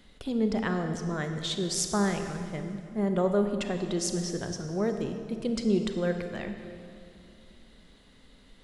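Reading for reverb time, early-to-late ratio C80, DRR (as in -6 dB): 2.4 s, 7.5 dB, 6.0 dB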